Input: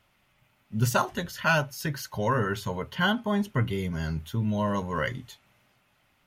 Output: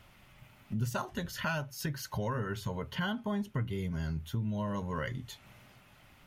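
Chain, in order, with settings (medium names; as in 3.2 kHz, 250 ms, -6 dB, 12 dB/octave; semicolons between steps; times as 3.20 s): bass shelf 190 Hz +6.5 dB; compression 3:1, threshold -44 dBFS, peak gain reduction 20.5 dB; trim +6.5 dB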